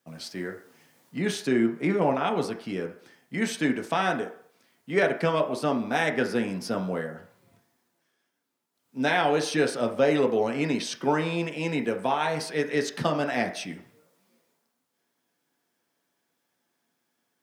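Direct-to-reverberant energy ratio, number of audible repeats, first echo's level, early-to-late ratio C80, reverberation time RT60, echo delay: 2.5 dB, no echo, no echo, 14.5 dB, 0.55 s, no echo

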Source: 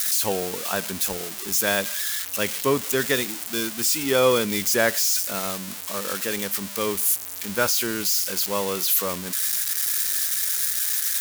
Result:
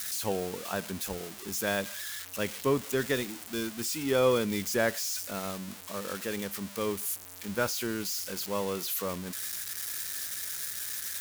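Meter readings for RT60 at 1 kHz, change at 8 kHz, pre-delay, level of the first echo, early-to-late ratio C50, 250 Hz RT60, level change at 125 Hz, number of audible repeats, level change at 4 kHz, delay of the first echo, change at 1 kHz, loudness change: no reverb, -11.5 dB, no reverb, no echo, no reverb, no reverb, -3.0 dB, no echo, -10.0 dB, no echo, -7.0 dB, -9.5 dB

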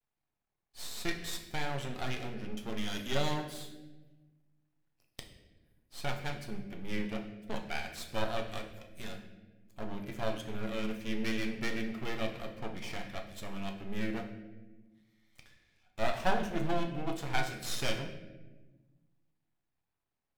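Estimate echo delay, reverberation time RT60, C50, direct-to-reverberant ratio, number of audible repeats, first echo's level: no echo, 1.2 s, 8.0 dB, 3.5 dB, no echo, no echo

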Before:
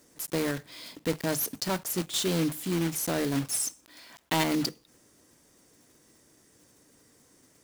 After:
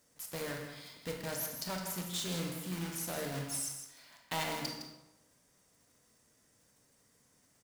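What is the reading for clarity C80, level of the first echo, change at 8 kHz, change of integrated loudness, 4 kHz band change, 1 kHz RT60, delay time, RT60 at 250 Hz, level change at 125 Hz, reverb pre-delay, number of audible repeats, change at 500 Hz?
5.0 dB, -8.5 dB, -7.5 dB, -9.0 dB, -7.0 dB, 1.0 s, 161 ms, 0.95 s, -8.0 dB, 25 ms, 1, -9.5 dB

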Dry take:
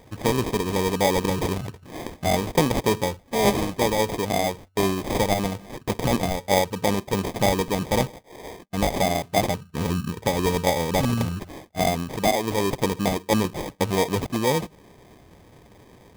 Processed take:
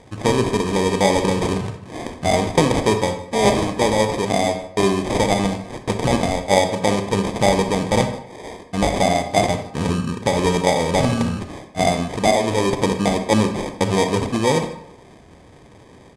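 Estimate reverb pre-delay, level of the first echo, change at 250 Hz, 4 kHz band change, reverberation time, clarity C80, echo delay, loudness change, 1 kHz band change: 30 ms, -21.5 dB, +5.0 dB, +4.0 dB, 0.75 s, 11.0 dB, 155 ms, +4.5 dB, +4.5 dB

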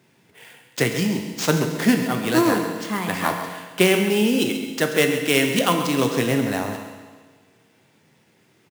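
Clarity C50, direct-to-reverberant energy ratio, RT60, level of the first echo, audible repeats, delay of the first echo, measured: 5.5 dB, 3.5 dB, 1.5 s, -11.5 dB, 2, 135 ms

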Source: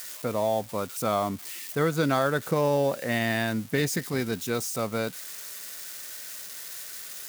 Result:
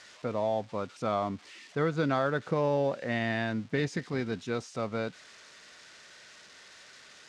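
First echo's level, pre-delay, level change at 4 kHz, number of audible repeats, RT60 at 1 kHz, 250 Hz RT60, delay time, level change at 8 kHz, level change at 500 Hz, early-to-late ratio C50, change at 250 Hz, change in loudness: no echo, no reverb, -7.5 dB, no echo, no reverb, no reverb, no echo, -16.5 dB, -3.5 dB, no reverb, -3.5 dB, -3.0 dB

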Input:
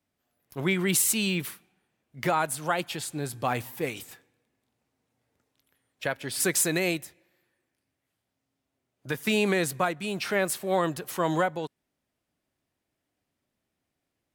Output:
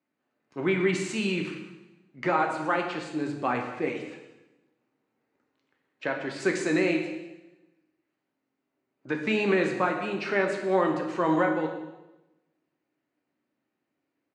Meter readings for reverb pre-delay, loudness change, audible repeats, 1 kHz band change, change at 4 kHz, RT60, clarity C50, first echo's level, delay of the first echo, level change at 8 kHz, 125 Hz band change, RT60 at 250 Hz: 3 ms, 0.0 dB, 1, +1.5 dB, -5.5 dB, 0.95 s, 6.0 dB, -17.0 dB, 194 ms, -16.0 dB, -2.5 dB, 1.2 s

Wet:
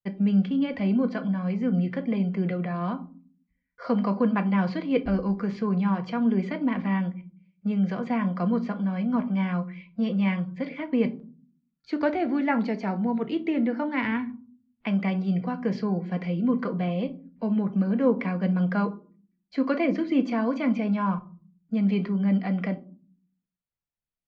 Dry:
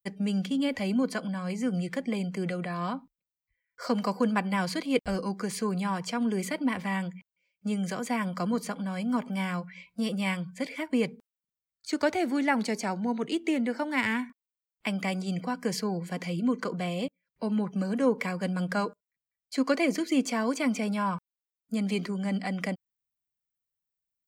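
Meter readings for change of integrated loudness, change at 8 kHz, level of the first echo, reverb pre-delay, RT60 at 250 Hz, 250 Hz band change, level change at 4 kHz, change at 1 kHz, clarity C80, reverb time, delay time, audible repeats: +3.5 dB, under -20 dB, no echo, 4 ms, 0.75 s, +5.0 dB, -6.5 dB, +0.5 dB, 22.5 dB, 0.40 s, no echo, no echo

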